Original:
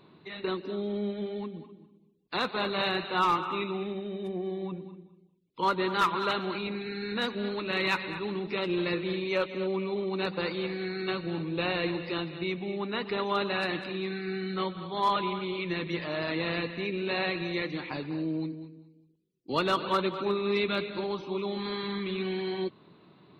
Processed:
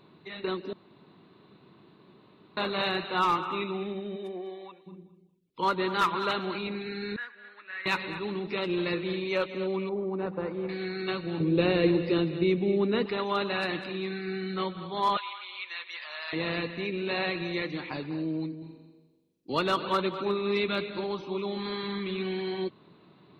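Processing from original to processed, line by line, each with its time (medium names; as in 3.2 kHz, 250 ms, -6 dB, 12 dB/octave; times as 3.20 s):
0.73–2.57 s: room tone
4.15–4.86 s: high-pass 230 Hz -> 970 Hz
7.16–7.86 s: band-pass filter 1.7 kHz, Q 5.3
9.89–10.69 s: low-pass 1.1 kHz
11.40–13.06 s: resonant low shelf 610 Hz +7 dB, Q 1.5
15.17–16.33 s: Bessel high-pass 1.3 kHz, order 4
18.58–19.53 s: flutter echo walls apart 7.3 m, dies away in 1 s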